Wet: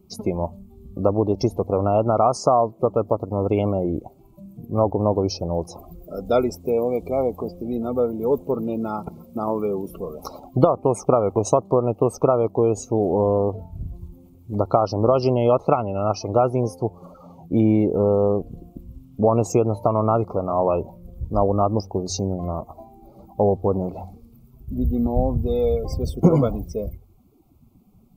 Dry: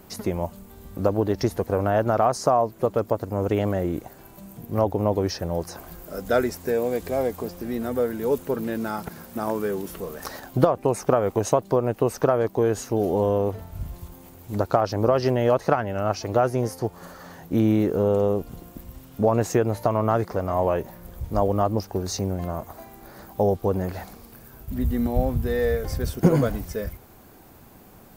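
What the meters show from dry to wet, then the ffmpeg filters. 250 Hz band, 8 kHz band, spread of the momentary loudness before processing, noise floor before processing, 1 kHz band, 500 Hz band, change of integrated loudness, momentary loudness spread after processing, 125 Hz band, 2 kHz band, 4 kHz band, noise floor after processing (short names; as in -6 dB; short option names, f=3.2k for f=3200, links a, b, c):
+2.5 dB, 0.0 dB, 16 LU, -48 dBFS, +2.5 dB, +2.5 dB, +2.5 dB, 14 LU, +2.0 dB, under -10 dB, -0.5 dB, -52 dBFS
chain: -af "asuperstop=centerf=1700:order=8:qfactor=2.3,afftdn=nr=21:nf=-38,bandreject=f=45.71:t=h:w=4,bandreject=f=91.42:t=h:w=4,volume=2.5dB"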